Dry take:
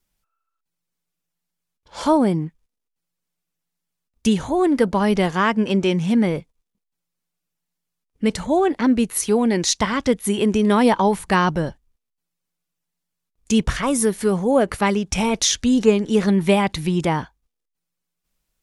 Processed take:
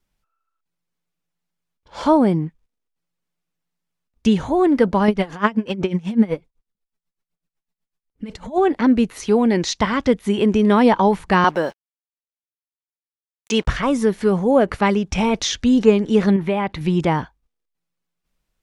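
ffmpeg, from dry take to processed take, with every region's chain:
-filter_complex "[0:a]asettb=1/sr,asplit=3[a][b][c];[a]atrim=end=5.084[d];[b]atrim=start=5.08:end=8.58,asetpts=PTS-STARTPTS,afade=t=in:d=0.004:c=qsin,afade=t=out:st=3.496:d=0.004:c=qsin,aphaser=in_gain=1:out_gain=1:delay=4.8:decay=0.45:speed=1.3:type=sinusoidal,aeval=exprs='val(0)*pow(10,-20*(0.5-0.5*cos(2*PI*8*n/s))/20)':c=same[e];[c]atrim=start=8.576[f];[d][e]acrossfade=d=0.004:c1=hsin:c2=qsin[g];[g][f]acrossfade=d=0.004:c1=qsin:c2=hsin,asettb=1/sr,asplit=3[h][i][j];[h]atrim=end=11.444[k];[i]atrim=start=11.44:end=13.67,asetpts=PTS-STARTPTS,afade=t=in:d=0.004:c=qsin,afade=t=out:st=2.226:d=0.004:c=qsin,highpass=430,acrusher=bits=7:mix=0:aa=0.5,acontrast=37[l];[j]atrim=start=13.666[m];[k][l]acrossfade=d=0.004:c1=hsin:c2=qsin[n];[n][m]acrossfade=d=0.004:c1=qsin:c2=hsin,asettb=1/sr,asplit=3[o][p][q];[o]atrim=end=16.364[r];[p]atrim=start=16.36:end=16.81,asetpts=PTS-STARTPTS,afade=t=in:d=0.004:c=qsin,afade=t=out:st=0.446:d=0.004:c=qsin,bass=f=250:g=-4,treble=f=4k:g=-13,acompressor=threshold=-20dB:ratio=2.5:attack=3.2:release=140:knee=1:detection=peak[s];[q]atrim=start=16.806[t];[r][s]acrossfade=d=0.004:c1=hsin:c2=qsin[u];[u][t]acrossfade=d=0.004:c1=qsin:c2=hsin,highshelf=f=5.1k:g=-10,acrossover=split=7400[v][w];[w]acompressor=threshold=-55dB:ratio=4:attack=1:release=60[x];[v][x]amix=inputs=2:normalize=0,volume=2dB"

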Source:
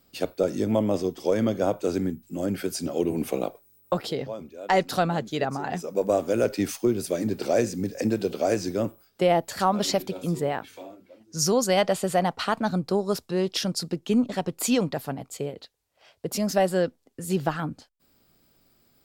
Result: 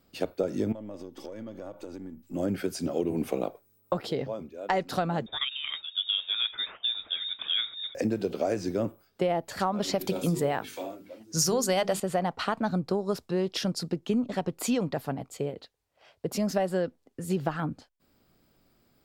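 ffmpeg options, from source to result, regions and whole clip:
-filter_complex "[0:a]asettb=1/sr,asplit=3[a][b][c];[a]atrim=end=0.724[d];[b]atrim=start=0.72:end=2.34,asetpts=PTS-STARTPTS,afade=t=in:d=0.004:c=qsin,afade=t=out:st=1.616:d=0.004:c=qsin,aeval=exprs='if(lt(val(0),0),0.708*val(0),val(0))':c=same,aecho=1:1:3.5:0.42,atrim=end_sample=71442,acompressor=threshold=-36dB:ratio=12:attack=3.2:release=140:knee=1:detection=peak[e];[c]atrim=start=2.336[f];[d][e]acrossfade=d=0.004:c1=hsin:c2=qsin[g];[g][f]acrossfade=d=0.004:c1=qsin:c2=hsin,asettb=1/sr,asplit=3[h][i][j];[h]atrim=end=5.264[k];[i]atrim=start=5.26:end=7.95,asetpts=PTS-STARTPTS,afade=t=in:d=0.004:c=qsin,afade=t=out:st=2.686:d=0.004:c=qsin,highpass=f=330:p=1,lowpass=f=3.3k:t=q:w=0.5098,lowpass=f=3.3k:t=q:w=0.6013,lowpass=f=3.3k:t=q:w=0.9,lowpass=f=3.3k:t=q:w=2.563,afreqshift=-3900[l];[j]atrim=start=7.946[m];[k][l]acrossfade=d=0.004:c1=hsin:c2=qsin[n];[n][m]acrossfade=d=0.004:c1=qsin:c2=hsin,asettb=1/sr,asplit=3[o][p][q];[o]atrim=end=10.014[r];[p]atrim=start=10.01:end=12,asetpts=PTS-STARTPTS,afade=t=in:d=0.004:c=qsin,afade=t=out:st=1.986:d=0.004:c=qsin,highshelf=f=4.3k:g=10.5,bandreject=f=50:t=h:w=6,bandreject=f=100:t=h:w=6,bandreject=f=150:t=h:w=6,bandreject=f=200:t=h:w=6,bandreject=f=250:t=h:w=6,bandreject=f=300:t=h:w=6,bandreject=f=350:t=h:w=6,bandreject=f=400:t=h:w=6,bandreject=f=450:t=h:w=6,acontrast=31[s];[q]atrim=start=11.996[t];[r][s]acrossfade=d=0.004:c1=hsin:c2=qsin[u];[u][t]acrossfade=d=0.004:c1=qsin:c2=hsin,highshelf=f=3.6k:g=-7.5,acompressor=threshold=-23dB:ratio=6"

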